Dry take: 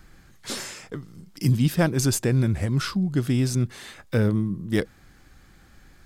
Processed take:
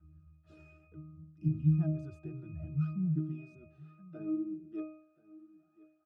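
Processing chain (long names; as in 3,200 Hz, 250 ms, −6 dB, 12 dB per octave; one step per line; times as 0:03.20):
phase shifter 0.66 Hz, delay 2.7 ms, feedback 51%
resonances in every octave D#, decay 0.61 s
high-pass filter sweep 82 Hz → 730 Hz, 0:01.82–0:05.79
single-tap delay 1,030 ms −20.5 dB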